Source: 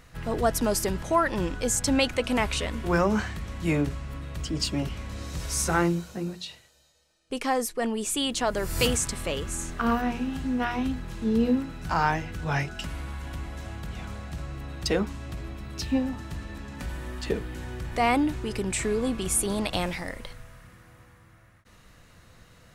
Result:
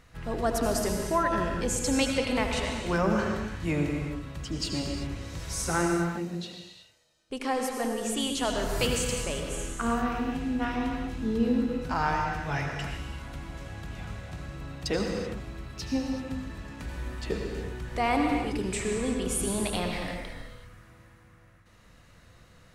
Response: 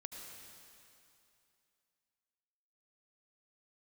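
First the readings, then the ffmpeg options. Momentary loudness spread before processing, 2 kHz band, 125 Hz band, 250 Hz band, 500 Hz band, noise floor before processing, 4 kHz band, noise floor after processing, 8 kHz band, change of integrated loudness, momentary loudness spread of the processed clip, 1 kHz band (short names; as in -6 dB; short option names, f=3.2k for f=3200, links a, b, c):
13 LU, -2.0 dB, -2.0 dB, -1.5 dB, -1.5 dB, -56 dBFS, -2.5 dB, -56 dBFS, -3.5 dB, -2.0 dB, 14 LU, -1.5 dB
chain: -filter_complex "[0:a]highshelf=f=11k:g=-6.5[a];[1:a]atrim=start_sample=2205,afade=t=out:st=0.44:d=0.01,atrim=end_sample=19845[b];[a][b]afir=irnorm=-1:irlink=0,volume=2dB"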